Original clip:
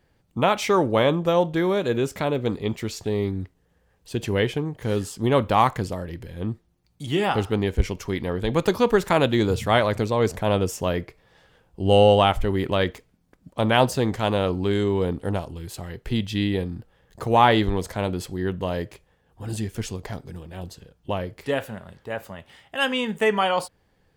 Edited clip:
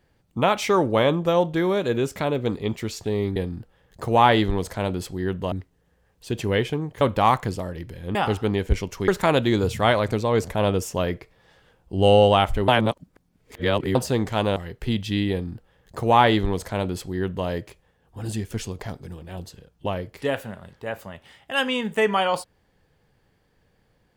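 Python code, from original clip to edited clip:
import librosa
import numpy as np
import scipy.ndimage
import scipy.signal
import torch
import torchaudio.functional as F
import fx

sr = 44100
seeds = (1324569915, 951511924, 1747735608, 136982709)

y = fx.edit(x, sr, fx.cut(start_s=4.85, length_s=0.49),
    fx.cut(start_s=6.48, length_s=0.75),
    fx.cut(start_s=8.16, length_s=0.79),
    fx.reverse_span(start_s=12.55, length_s=1.27),
    fx.cut(start_s=14.43, length_s=1.37),
    fx.duplicate(start_s=16.55, length_s=2.16, to_s=3.36), tone=tone)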